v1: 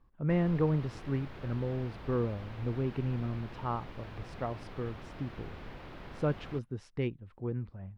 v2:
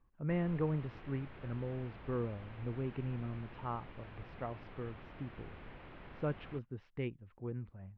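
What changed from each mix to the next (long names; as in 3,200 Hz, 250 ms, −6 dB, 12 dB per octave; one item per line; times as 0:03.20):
master: add transistor ladder low-pass 3,600 Hz, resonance 25%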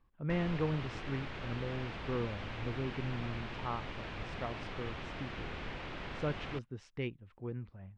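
background +8.0 dB
master: remove high-frequency loss of the air 360 metres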